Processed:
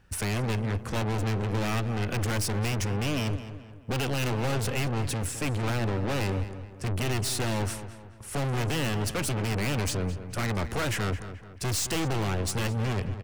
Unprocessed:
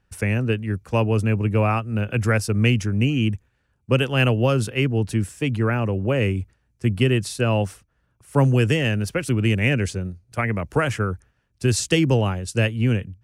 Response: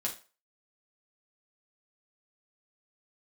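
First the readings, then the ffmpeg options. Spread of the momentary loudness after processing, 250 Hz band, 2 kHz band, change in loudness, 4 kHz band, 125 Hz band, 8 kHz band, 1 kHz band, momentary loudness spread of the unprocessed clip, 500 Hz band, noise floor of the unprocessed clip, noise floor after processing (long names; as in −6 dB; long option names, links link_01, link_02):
6 LU, −8.5 dB, −7.5 dB, −7.5 dB, −4.0 dB, −8.0 dB, 0.0 dB, −4.5 dB, 7 LU, −9.0 dB, −69 dBFS, −46 dBFS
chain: -filter_complex "[0:a]aeval=exprs='(tanh(63.1*val(0)+0.3)-tanh(0.3))/63.1':channel_layout=same,asplit=2[link_01][link_02];[link_02]adelay=215,lowpass=frequency=3000:poles=1,volume=-11.5dB,asplit=2[link_03][link_04];[link_04]adelay=215,lowpass=frequency=3000:poles=1,volume=0.45,asplit=2[link_05][link_06];[link_06]adelay=215,lowpass=frequency=3000:poles=1,volume=0.45,asplit=2[link_07][link_08];[link_08]adelay=215,lowpass=frequency=3000:poles=1,volume=0.45,asplit=2[link_09][link_10];[link_10]adelay=215,lowpass=frequency=3000:poles=1,volume=0.45[link_11];[link_03][link_05][link_07][link_09][link_11]amix=inputs=5:normalize=0[link_12];[link_01][link_12]amix=inputs=2:normalize=0,volume=8.5dB"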